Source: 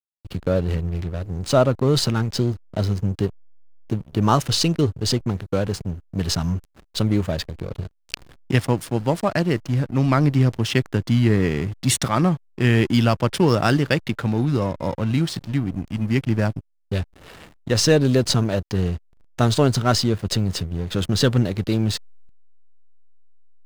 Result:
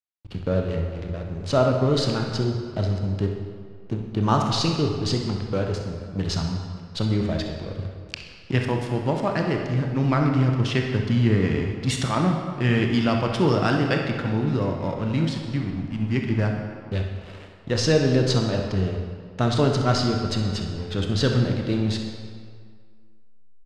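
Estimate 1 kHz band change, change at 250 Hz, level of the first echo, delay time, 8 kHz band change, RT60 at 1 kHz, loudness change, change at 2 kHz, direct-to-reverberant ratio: -1.5 dB, -2.0 dB, -11.0 dB, 64 ms, -8.5 dB, 2.0 s, -2.5 dB, -2.0 dB, 2.0 dB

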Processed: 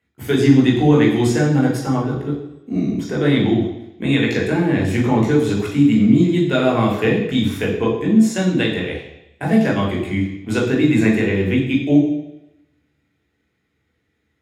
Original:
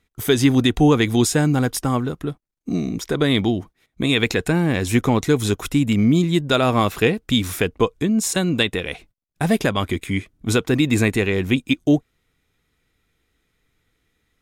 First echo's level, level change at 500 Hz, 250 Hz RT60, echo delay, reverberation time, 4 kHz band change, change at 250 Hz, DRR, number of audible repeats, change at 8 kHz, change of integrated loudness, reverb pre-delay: none, +2.0 dB, 0.85 s, none, 0.90 s, -4.0 dB, +4.0 dB, -3.0 dB, none, -7.5 dB, +2.5 dB, 16 ms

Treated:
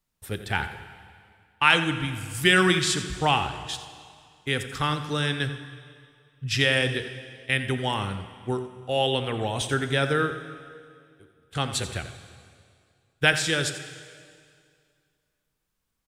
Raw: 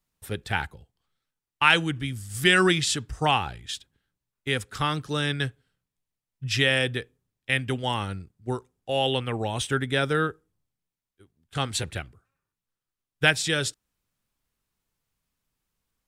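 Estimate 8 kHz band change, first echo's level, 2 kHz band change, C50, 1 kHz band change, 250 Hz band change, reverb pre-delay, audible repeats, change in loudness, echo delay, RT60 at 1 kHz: +0.5 dB, -13.0 dB, +0.5 dB, 9.0 dB, +0.5 dB, +0.5 dB, 5 ms, 1, +0.5 dB, 87 ms, 2.2 s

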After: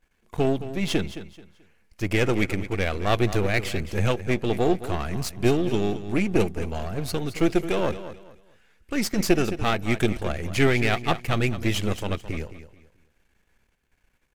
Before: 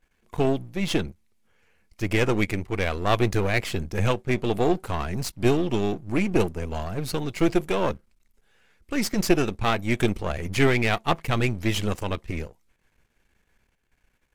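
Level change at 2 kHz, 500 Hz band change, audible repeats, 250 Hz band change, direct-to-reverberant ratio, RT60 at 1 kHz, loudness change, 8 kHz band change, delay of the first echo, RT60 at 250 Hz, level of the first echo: 0.0 dB, 0.0 dB, 2, 0.0 dB, none, none, 0.0 dB, 0.0 dB, 0.217 s, none, -13.0 dB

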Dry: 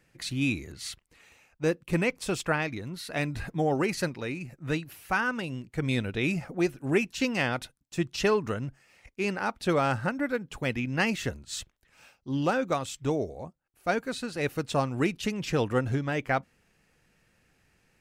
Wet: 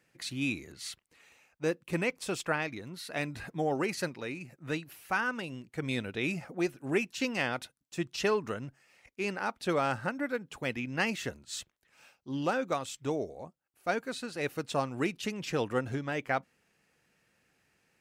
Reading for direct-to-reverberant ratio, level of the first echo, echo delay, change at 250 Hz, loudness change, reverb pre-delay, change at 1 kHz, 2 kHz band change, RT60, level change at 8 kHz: none, none, none, -5.0 dB, -4.0 dB, none, -3.0 dB, -3.0 dB, none, -3.0 dB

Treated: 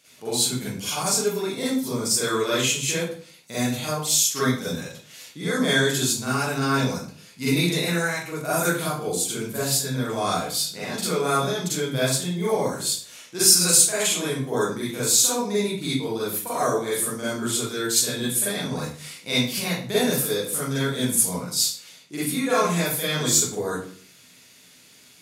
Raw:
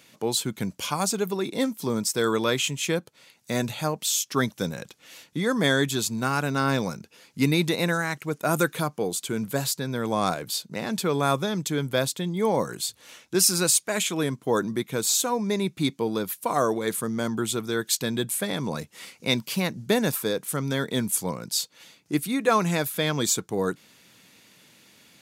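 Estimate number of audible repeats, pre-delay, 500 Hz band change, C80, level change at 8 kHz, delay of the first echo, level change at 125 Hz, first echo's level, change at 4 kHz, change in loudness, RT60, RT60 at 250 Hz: none, 38 ms, +1.0 dB, 5.0 dB, +6.5 dB, none, +1.0 dB, none, +4.0 dB, +3.0 dB, 0.50 s, 0.55 s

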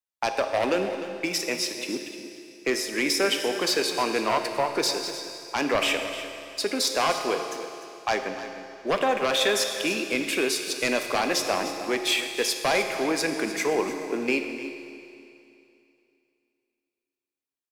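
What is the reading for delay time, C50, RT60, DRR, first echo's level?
0.301 s, 5.5 dB, 2.7 s, 4.5 dB, -13.5 dB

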